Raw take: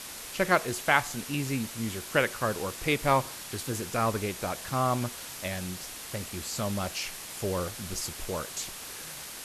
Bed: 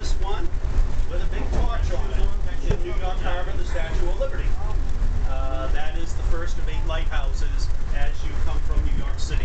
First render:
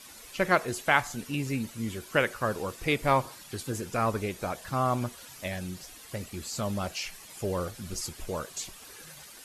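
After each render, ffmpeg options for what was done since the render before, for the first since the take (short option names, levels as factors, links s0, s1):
-af "afftdn=nr=11:nf=-42"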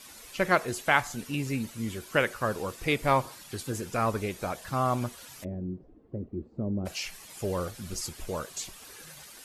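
-filter_complex "[0:a]asplit=3[s0][s1][s2];[s0]afade=t=out:st=5.43:d=0.02[s3];[s1]lowpass=f=350:t=q:w=2,afade=t=in:st=5.43:d=0.02,afade=t=out:st=6.85:d=0.02[s4];[s2]afade=t=in:st=6.85:d=0.02[s5];[s3][s4][s5]amix=inputs=3:normalize=0"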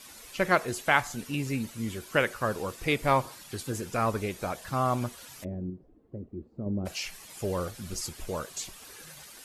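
-filter_complex "[0:a]asplit=3[s0][s1][s2];[s0]atrim=end=5.702[s3];[s1]atrim=start=5.698:end=6.662,asetpts=PTS-STARTPTS,volume=0.631[s4];[s2]atrim=start=6.658[s5];[s3][s4]acrossfade=d=0.004:c1=hsin:c2=hsin[s6];[s6][s5]acrossfade=d=0.004:c1=hsin:c2=hsin"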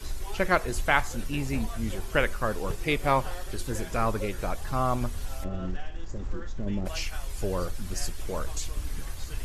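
-filter_complex "[1:a]volume=0.266[s0];[0:a][s0]amix=inputs=2:normalize=0"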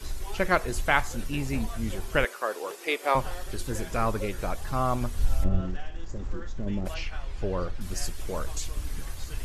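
-filter_complex "[0:a]asettb=1/sr,asplit=3[s0][s1][s2];[s0]atrim=end=2.254[s3];[s1]atrim=start=2.25:end=3.15,asetpts=PTS-STARTPTS,afade=t=in:d=0.004:c=qsin,afade=t=out:st=0.896:d=0.004:c=qsin,highpass=f=350:w=0.5412,highpass=f=350:w=1.3066[s4];[s2]atrim=start=3.146[s5];[s3][s4]acrossfade=d=0.004:c1=hsin:c2=qsin[s6];[s6][s5]acrossfade=d=0.004:c1=qsin:c2=hsin,asettb=1/sr,asplit=3[s7][s8][s9];[s7]atrim=end=5.194[s10];[s8]atrim=start=5.19:end=5.61,asetpts=PTS-STARTPTS,afade=t=in:d=0.004:c=qsin,afade=t=out:st=0.416:d=0.004:c=qsin,lowshelf=f=210:g=11.5[s11];[s9]atrim=start=5.606[s12];[s10][s11]acrossfade=d=0.004:c1=hsin:c2=qsin[s13];[s13][s12]acrossfade=d=0.004:c1=qsin:c2=hsin,asettb=1/sr,asplit=3[s14][s15][s16];[s14]atrim=end=6.944[s17];[s15]atrim=start=6.94:end=7.81,asetpts=PTS-STARTPTS,afade=t=in:d=0.004:c=qsin,afade=t=out:st=0.866:d=0.004:c=qsin,lowpass=3400[s18];[s16]atrim=start=7.806[s19];[s17][s18]acrossfade=d=0.004:c1=hsin:c2=qsin[s20];[s20][s19]acrossfade=d=0.004:c1=qsin:c2=hsin"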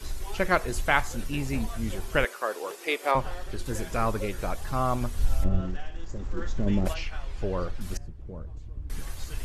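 -filter_complex "[0:a]asettb=1/sr,asplit=3[s0][s1][s2];[s0]atrim=end=3.114[s3];[s1]atrim=start=3.11:end=3.66,asetpts=PTS-STARTPTS,afade=t=in:d=0.004:c=qsin,afade=t=out:st=0.546:d=0.004:c=qsin,highshelf=f=6200:g=-10.5[s4];[s2]atrim=start=3.656[s5];[s3][s4]acrossfade=d=0.004:c1=hsin:c2=qsin[s6];[s6][s5]acrossfade=d=0.004:c1=qsin:c2=hsin,asettb=1/sr,asplit=3[s7][s8][s9];[s7]atrim=end=7.974[s10];[s8]atrim=start=7.97:end=8.9,asetpts=PTS-STARTPTS,afade=t=in:d=0.004:c=qsin,afade=t=out:st=0.926:d=0.004:c=qsin,bandpass=f=100:t=q:w=0.68[s11];[s9]atrim=start=8.896[s12];[s10][s11]acrossfade=d=0.004:c1=hsin:c2=qsin[s13];[s13][s12]acrossfade=d=0.004:c1=qsin:c2=hsin,asplit=3[s14][s15][s16];[s14]atrim=end=6.372[s17];[s15]atrim=start=6.368:end=6.932,asetpts=PTS-STARTPTS,volume=1.88[s18];[s16]atrim=start=6.928[s19];[s17][s18]acrossfade=d=0.004:c1=hsin:c2=hsin[s20];[s20][s19]acrossfade=d=0.004:c1=hsin:c2=hsin"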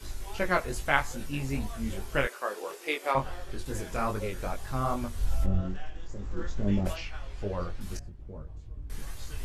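-af "flanger=delay=19.5:depth=3.3:speed=2.4"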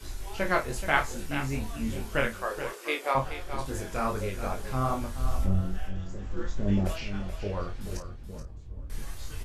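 -filter_complex "[0:a]asplit=2[s0][s1];[s1]adelay=31,volume=0.422[s2];[s0][s2]amix=inputs=2:normalize=0,aecho=1:1:428:0.299"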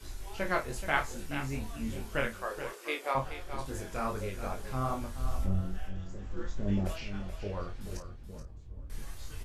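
-af "volume=0.596"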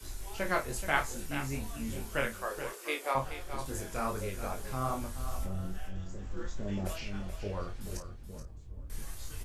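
-filter_complex "[0:a]acrossover=split=410|6500[s0][s1][s2];[s0]alimiter=level_in=1.78:limit=0.0631:level=0:latency=1,volume=0.562[s3];[s2]acontrast=64[s4];[s3][s1][s4]amix=inputs=3:normalize=0"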